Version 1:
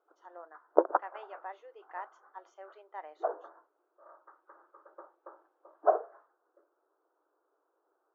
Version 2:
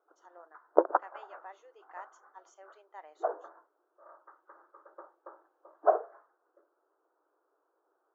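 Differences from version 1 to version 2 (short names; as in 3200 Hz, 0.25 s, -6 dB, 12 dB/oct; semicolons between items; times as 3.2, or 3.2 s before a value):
speech -6.0 dB; master: remove air absorption 210 m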